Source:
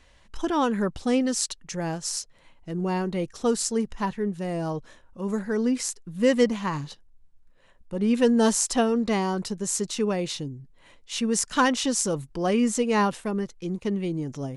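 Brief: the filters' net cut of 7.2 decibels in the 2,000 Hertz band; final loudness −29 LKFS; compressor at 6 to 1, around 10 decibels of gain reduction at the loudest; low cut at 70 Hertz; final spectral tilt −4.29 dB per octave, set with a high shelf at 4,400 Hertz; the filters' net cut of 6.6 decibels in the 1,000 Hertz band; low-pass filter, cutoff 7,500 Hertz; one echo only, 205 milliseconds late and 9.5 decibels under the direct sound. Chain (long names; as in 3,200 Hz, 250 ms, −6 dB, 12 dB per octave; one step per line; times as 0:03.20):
high-pass filter 70 Hz
low-pass filter 7,500 Hz
parametric band 1,000 Hz −7 dB
parametric band 2,000 Hz −8 dB
high-shelf EQ 4,400 Hz +6 dB
downward compressor 6 to 1, threshold −27 dBFS
single-tap delay 205 ms −9.5 dB
level +2.5 dB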